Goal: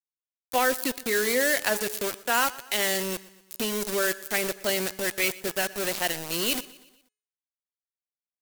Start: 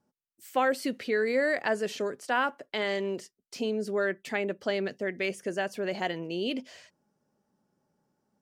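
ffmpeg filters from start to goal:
-filter_complex "[0:a]aeval=exprs='val(0)*gte(abs(val(0)),0.0237)':c=same,asetrate=42845,aresample=44100,atempo=1.0293,crystalizer=i=4.5:c=0,bandreject=f=423.4:t=h:w=4,bandreject=f=846.8:t=h:w=4,bandreject=f=1.2702k:t=h:w=4,bandreject=f=1.6936k:t=h:w=4,bandreject=f=2.117k:t=h:w=4,bandreject=f=2.5404k:t=h:w=4,bandreject=f=2.9638k:t=h:w=4,bandreject=f=3.3872k:t=h:w=4,bandreject=f=3.8106k:t=h:w=4,bandreject=f=4.234k:t=h:w=4,bandreject=f=4.6574k:t=h:w=4,bandreject=f=5.0808k:t=h:w=4,bandreject=f=5.5042k:t=h:w=4,bandreject=f=5.9276k:t=h:w=4,bandreject=f=6.351k:t=h:w=4,bandreject=f=6.7744k:t=h:w=4,bandreject=f=7.1978k:t=h:w=4,bandreject=f=7.6212k:t=h:w=4,bandreject=f=8.0446k:t=h:w=4,bandreject=f=8.468k:t=h:w=4,bandreject=f=8.8914k:t=h:w=4,bandreject=f=9.3148k:t=h:w=4,bandreject=f=9.7382k:t=h:w=4,asplit=2[a][b];[b]aecho=0:1:120|240|360|480:0.1|0.05|0.025|0.0125[c];[a][c]amix=inputs=2:normalize=0"

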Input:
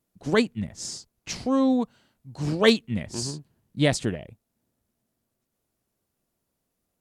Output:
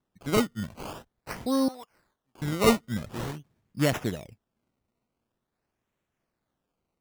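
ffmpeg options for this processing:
-filter_complex "[0:a]asettb=1/sr,asplit=3[a][b][c];[a]atrim=end=1.684[d];[b]atrim=start=1.68:end=2.42,asetpts=PTS-STARTPTS,afade=t=in:d=0.004:c=qsin,afade=t=out:st=0.736:d=0.004:c=qsin,highpass=1.1k[e];[c]atrim=start=2.416[f];[d][e]acrossfade=d=0.004:c1=hsin:c2=qsin[g];[g][f]acrossfade=d=0.004:c1=qsin:c2=hsin,acrusher=samples=18:mix=1:aa=0.000001:lfo=1:lforange=18:lforate=0.46,volume=-3dB"

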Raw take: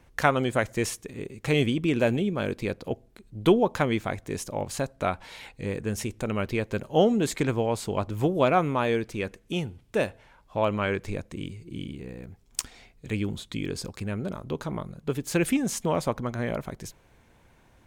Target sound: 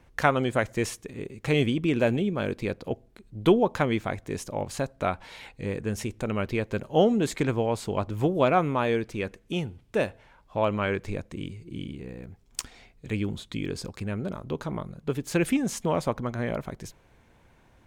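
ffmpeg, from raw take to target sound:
-af "highshelf=f=5.8k:g=-5"

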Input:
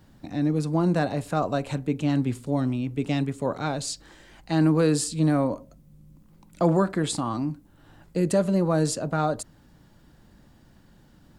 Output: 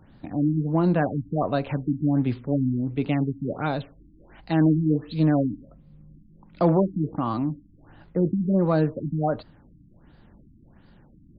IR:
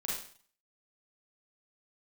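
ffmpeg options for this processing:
-filter_complex "[0:a]asplit=2[a][b];[b]asoftclip=type=tanh:threshold=-19.5dB,volume=-11dB[c];[a][c]amix=inputs=2:normalize=0,afftfilt=real='re*lt(b*sr/1024,310*pow(5100/310,0.5+0.5*sin(2*PI*1.4*pts/sr)))':imag='im*lt(b*sr/1024,310*pow(5100/310,0.5+0.5*sin(2*PI*1.4*pts/sr)))':win_size=1024:overlap=0.75"

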